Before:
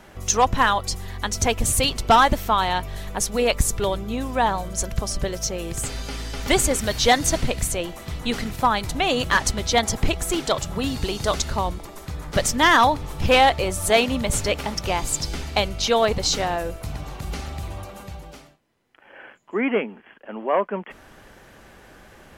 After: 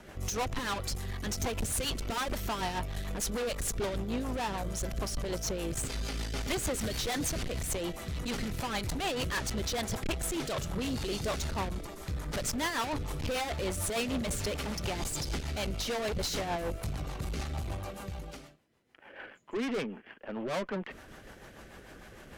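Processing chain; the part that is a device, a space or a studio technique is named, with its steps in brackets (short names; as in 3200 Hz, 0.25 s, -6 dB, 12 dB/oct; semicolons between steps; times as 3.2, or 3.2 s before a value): overdriven rotary cabinet (tube stage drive 30 dB, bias 0.45; rotary speaker horn 6.7 Hz); gain +1.5 dB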